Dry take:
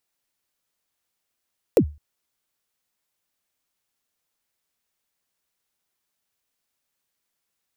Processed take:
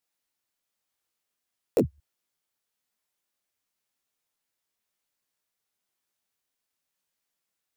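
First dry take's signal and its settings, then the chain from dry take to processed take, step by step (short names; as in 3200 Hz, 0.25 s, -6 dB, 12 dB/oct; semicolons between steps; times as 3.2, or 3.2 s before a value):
kick drum length 0.21 s, from 560 Hz, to 74 Hz, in 78 ms, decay 0.30 s, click on, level -8 dB
low shelf 85 Hz -5 dB; detuned doubles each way 34 cents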